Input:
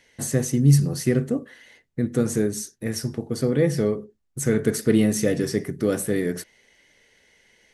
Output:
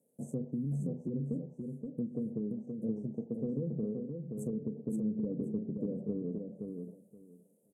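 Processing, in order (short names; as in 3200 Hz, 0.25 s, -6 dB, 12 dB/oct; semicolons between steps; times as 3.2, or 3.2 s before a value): median filter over 9 samples; HPF 180 Hz 24 dB/oct; treble ducked by the level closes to 410 Hz, closed at -18.5 dBFS; inverse Chebyshev band-stop 1300–4200 Hz, stop band 60 dB; treble ducked by the level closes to 790 Hz, closed at -19.5 dBFS; bell 350 Hz -13 dB 0.82 oct; limiter -23.5 dBFS, peak gain reduction 7 dB; compressor, threshold -32 dBFS, peak gain reduction 6 dB; feedback echo 0.524 s, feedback 18%, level -5 dB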